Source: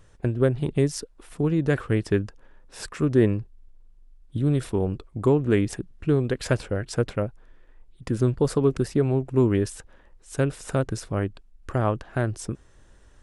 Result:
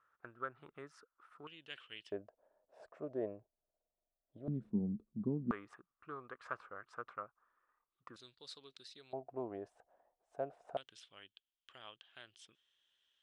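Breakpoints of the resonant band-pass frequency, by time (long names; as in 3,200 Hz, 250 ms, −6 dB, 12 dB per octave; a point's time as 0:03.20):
resonant band-pass, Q 8.8
1,300 Hz
from 0:01.47 3,000 Hz
from 0:02.12 640 Hz
from 0:04.48 210 Hz
from 0:05.51 1,200 Hz
from 0:08.16 3,900 Hz
from 0:09.13 700 Hz
from 0:10.77 3,200 Hz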